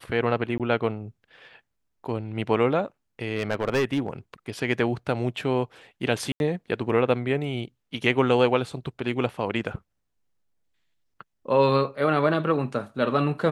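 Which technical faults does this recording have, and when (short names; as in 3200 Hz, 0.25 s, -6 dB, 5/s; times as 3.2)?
0.58–0.6 gap 17 ms
3.36–4.1 clipped -19 dBFS
6.32–6.4 gap 81 ms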